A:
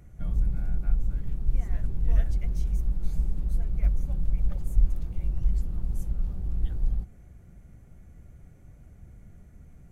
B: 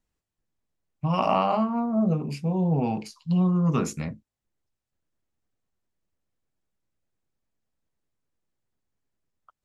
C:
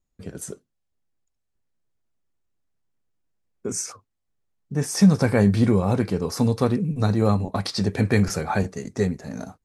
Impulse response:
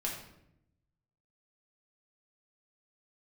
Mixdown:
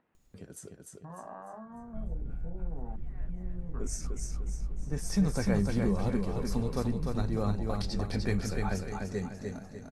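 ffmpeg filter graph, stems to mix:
-filter_complex "[0:a]acompressor=threshold=0.0708:ratio=6,bass=f=250:g=2,treble=f=4000:g=-8,adelay=1450,volume=0.75,asplit=2[s0][s1];[s1]volume=0.422[s2];[1:a]lowpass=2300,afwtdn=0.0316,volume=0.224,asplit=2[s3][s4];[2:a]adelay=150,volume=0.251,asplit=2[s5][s6];[s6]volume=0.631[s7];[s4]apad=whole_len=501043[s8];[s0][s8]sidechaincompress=threshold=0.00398:ratio=8:attack=41:release=332[s9];[s9][s3]amix=inputs=2:normalize=0,highpass=200,lowpass=2700,acompressor=threshold=0.00631:ratio=3,volume=1[s10];[s2][s7]amix=inputs=2:normalize=0,aecho=0:1:299|598|897|1196|1495|1794:1|0.4|0.16|0.064|0.0256|0.0102[s11];[s5][s10][s11]amix=inputs=3:normalize=0,acompressor=mode=upward:threshold=0.00562:ratio=2.5"

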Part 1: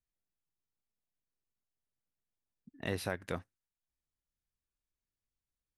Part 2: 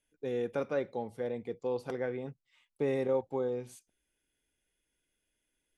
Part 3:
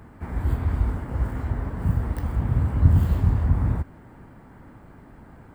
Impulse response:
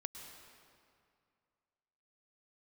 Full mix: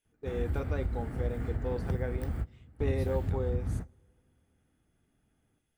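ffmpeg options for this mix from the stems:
-filter_complex "[0:a]volume=0.251[s0];[1:a]volume=0.75,asplit=3[s1][s2][s3];[s2]volume=0.0794[s4];[2:a]equalizer=f=990:w=3.9:g=-12,acompressor=threshold=0.0631:ratio=6,adelay=50,volume=0.596,asplit=2[s5][s6];[s6]volume=0.0794[s7];[s3]apad=whole_len=246527[s8];[s5][s8]sidechaingate=range=0.0224:threshold=0.00112:ratio=16:detection=peak[s9];[3:a]atrim=start_sample=2205[s10];[s4][s7]amix=inputs=2:normalize=0[s11];[s11][s10]afir=irnorm=-1:irlink=0[s12];[s0][s1][s9][s12]amix=inputs=4:normalize=0,bandreject=f=560:w=13"

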